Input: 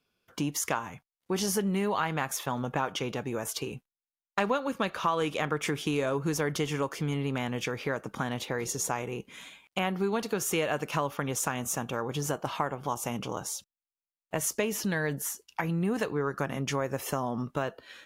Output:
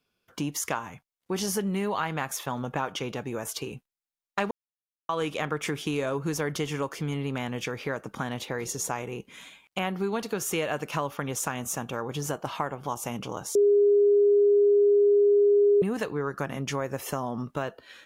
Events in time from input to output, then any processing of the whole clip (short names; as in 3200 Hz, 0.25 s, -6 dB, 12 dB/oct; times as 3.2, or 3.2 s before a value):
4.51–5.09 mute
13.55–15.82 bleep 408 Hz -16.5 dBFS